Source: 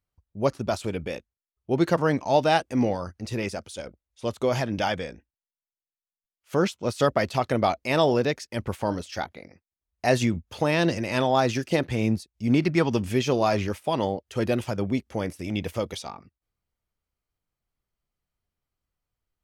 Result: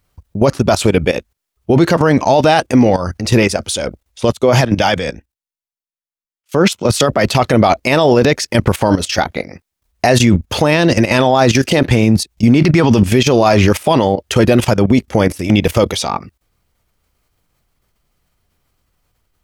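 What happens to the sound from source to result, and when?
4.32–7.27 s: three bands expanded up and down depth 70%
whole clip: level held to a coarse grid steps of 15 dB; loudness maximiser +27 dB; trim -1 dB

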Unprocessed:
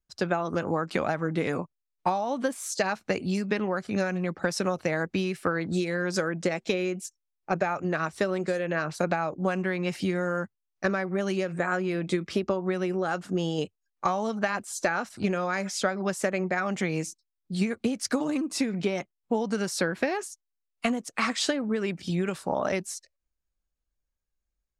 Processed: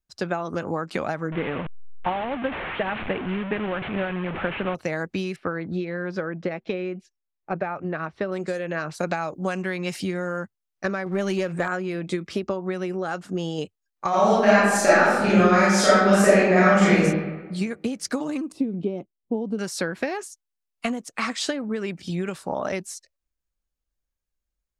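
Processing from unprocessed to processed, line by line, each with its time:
1.32–4.75 s: one-bit delta coder 16 kbps, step -25 dBFS
5.36–8.32 s: distance through air 300 m
9.03–10.02 s: treble shelf 3.7 kHz +8.5 dB
11.06–11.68 s: waveshaping leveller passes 1
14.09–16.96 s: reverb throw, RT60 1.3 s, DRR -11 dB
18.52–19.59 s: FFT filter 150 Hz 0 dB, 320 Hz +4 dB, 1.2 kHz -13 dB, 1.8 kHz -24 dB, 3 kHz -12 dB, 6.7 kHz -26 dB, 10 kHz -19 dB

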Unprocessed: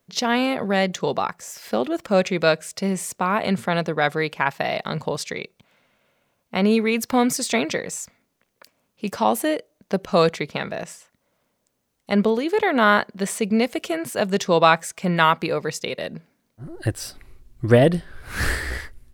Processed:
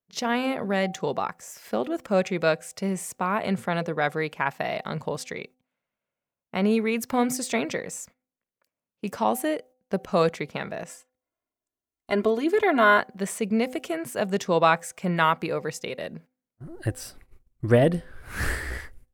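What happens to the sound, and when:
10.89–13.00 s: comb 2.9 ms, depth 87%
whole clip: gate -42 dBFS, range -18 dB; peaking EQ 4.2 kHz -5 dB 1 oct; de-hum 254.5 Hz, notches 3; trim -4 dB

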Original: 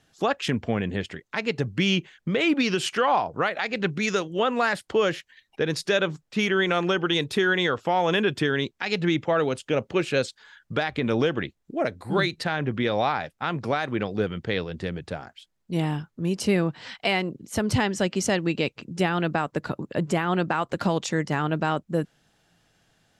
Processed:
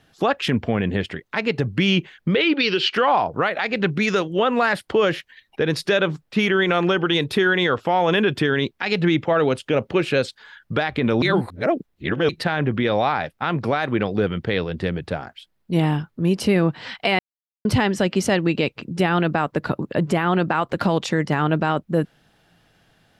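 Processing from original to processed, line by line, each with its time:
2.35–2.94 s: cabinet simulation 240–5200 Hz, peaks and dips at 250 Hz -7 dB, 420 Hz +4 dB, 680 Hz -10 dB, 1.1 kHz -5 dB, 3 kHz +4 dB, 4.4 kHz +7 dB
11.22–12.29 s: reverse
17.19–17.65 s: mute
whole clip: peaking EQ 7 kHz -9 dB 0.85 oct; peak limiter -16 dBFS; trim +6.5 dB

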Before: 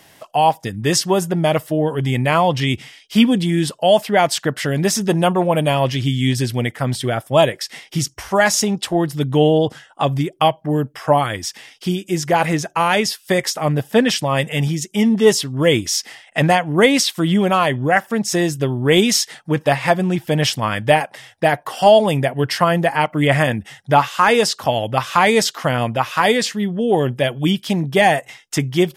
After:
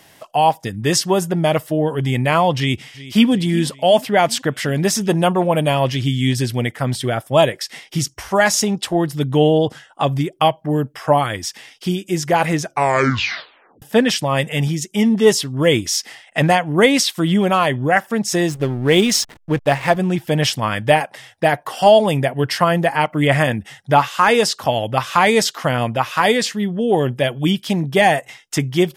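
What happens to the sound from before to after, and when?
2.57–3.30 s: echo throw 370 ms, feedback 60%, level -17 dB
12.63 s: tape stop 1.19 s
18.49–19.97 s: hysteresis with a dead band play -26.5 dBFS

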